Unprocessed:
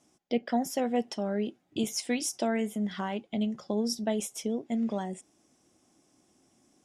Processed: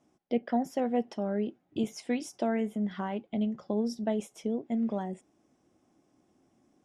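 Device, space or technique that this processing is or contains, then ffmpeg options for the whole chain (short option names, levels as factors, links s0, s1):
through cloth: -af "highshelf=f=3300:g=-15.5"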